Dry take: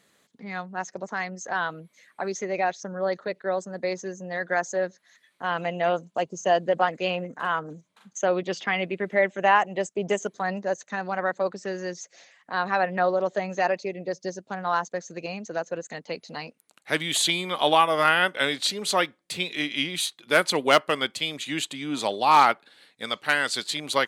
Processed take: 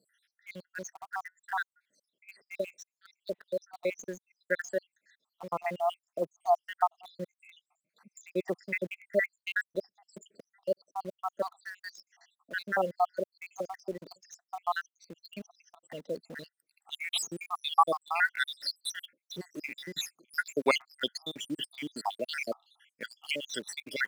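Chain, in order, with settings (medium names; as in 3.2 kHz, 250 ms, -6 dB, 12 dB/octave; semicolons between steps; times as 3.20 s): random holes in the spectrogram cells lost 82%; high-pass 170 Hz 12 dB/octave; in parallel at -8.5 dB: bit crusher 7-bit; on the sum: trim -4 dB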